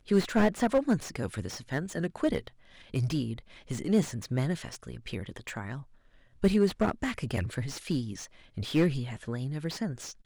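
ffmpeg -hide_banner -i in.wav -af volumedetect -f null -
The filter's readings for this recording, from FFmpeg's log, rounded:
mean_volume: -30.6 dB
max_volume: -10.8 dB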